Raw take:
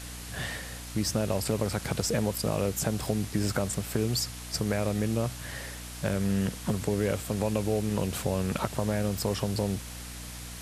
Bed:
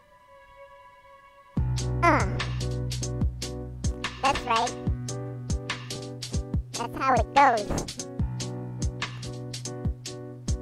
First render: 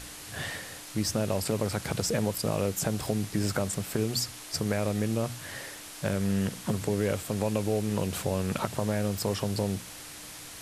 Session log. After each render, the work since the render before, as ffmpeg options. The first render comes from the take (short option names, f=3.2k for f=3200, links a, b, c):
-af "bandreject=f=60:t=h:w=6,bandreject=f=120:t=h:w=6,bandreject=f=180:t=h:w=6,bandreject=f=240:t=h:w=6"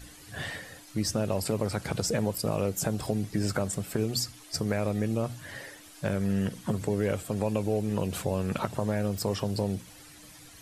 -af "afftdn=nr=11:nf=-44"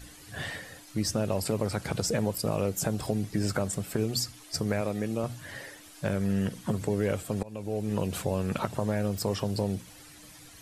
-filter_complex "[0:a]asettb=1/sr,asplit=3[a][b][c];[a]atrim=end=4.814[d];[b]atrim=start=4.81:end=5.24,asetpts=PTS-STARTPTS,afade=t=in:d=0.004:c=qsin,afade=t=out:st=0.426:d=0.004:c=qsin,highpass=f=180:p=1[e];[c]atrim=start=5.236[f];[d][e]acrossfade=d=0.004:c1=hsin:c2=qsin[g];[g][f]acrossfade=d=0.004:c1=qsin:c2=hsin,asplit=2[h][i];[h]atrim=end=7.43,asetpts=PTS-STARTPTS,afade=t=out:st=7.426:d=0.004:c=hsin:silence=0.0749894[j];[i]atrim=start=7.43,asetpts=PTS-STARTPTS,afade=t=in:d=0.51:silence=0.0749894[k];[j][k]concat=n=2:v=0:a=1"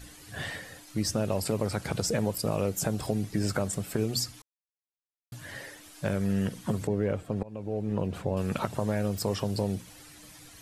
-filter_complex "[0:a]asettb=1/sr,asplit=3[a][b][c];[a]atrim=end=6.874[d];[b]atrim=start=6.87:end=8.37,asetpts=PTS-STARTPTS,afade=t=in:d=0.004:c=qsin,afade=t=out:st=1.496:d=0.004:c=qsin,lowpass=f=1.3k:p=1[e];[c]atrim=start=8.366[f];[d][e]acrossfade=d=0.004:c1=hsin:c2=qsin[g];[g][f]acrossfade=d=0.004:c1=qsin:c2=hsin,asplit=3[h][i][j];[h]atrim=end=4.42,asetpts=PTS-STARTPTS,afade=t=out:st=4.416:d=0.004:c=hsin[k];[i]atrim=start=4.42:end=5.32,asetpts=PTS-STARTPTS,volume=0[l];[j]atrim=start=5.32,asetpts=PTS-STARTPTS,afade=t=in:d=0.004:c=hsin[m];[k][l][m]concat=n=3:v=0:a=1"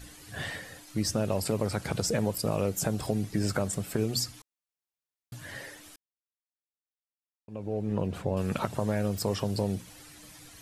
-filter_complex "[0:a]asplit=3[a][b][c];[a]atrim=end=5.96,asetpts=PTS-STARTPTS,afade=t=out:st=5.956:d=0.004:c=hsin[d];[b]atrim=start=5.96:end=7.48,asetpts=PTS-STARTPTS,volume=0[e];[c]atrim=start=7.48,asetpts=PTS-STARTPTS,afade=t=in:d=0.004:c=hsin[f];[d][e][f]concat=n=3:v=0:a=1"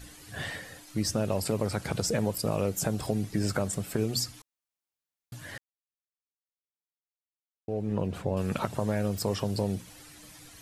-filter_complex "[0:a]asplit=3[a][b][c];[a]atrim=end=5.58,asetpts=PTS-STARTPTS,afade=t=out:st=5.576:d=0.004:c=hsin[d];[b]atrim=start=5.58:end=7.68,asetpts=PTS-STARTPTS,volume=0[e];[c]atrim=start=7.68,asetpts=PTS-STARTPTS,afade=t=in:d=0.004:c=hsin[f];[d][e][f]concat=n=3:v=0:a=1"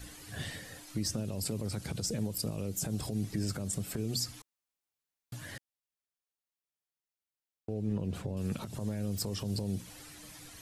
-filter_complex "[0:a]alimiter=limit=-22.5dB:level=0:latency=1:release=97,acrossover=split=370|3000[a][b][c];[b]acompressor=threshold=-47dB:ratio=6[d];[a][d][c]amix=inputs=3:normalize=0"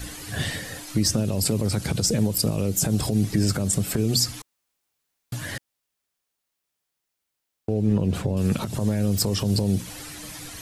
-af "volume=12dB"